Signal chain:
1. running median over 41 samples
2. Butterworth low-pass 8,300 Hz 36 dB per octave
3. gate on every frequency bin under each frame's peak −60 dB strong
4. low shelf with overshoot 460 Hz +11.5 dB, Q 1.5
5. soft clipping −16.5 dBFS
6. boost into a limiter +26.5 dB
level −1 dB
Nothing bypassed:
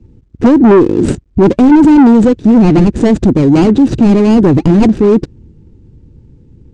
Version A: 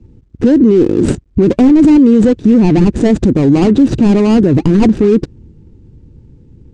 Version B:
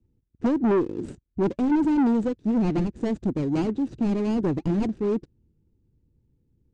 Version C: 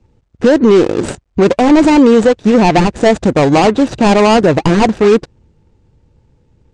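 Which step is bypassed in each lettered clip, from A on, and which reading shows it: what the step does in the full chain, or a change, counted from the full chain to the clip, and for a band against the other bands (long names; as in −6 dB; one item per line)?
5, distortion level −9 dB
6, change in integrated loudness −16.5 LU
4, 125 Hz band −8.0 dB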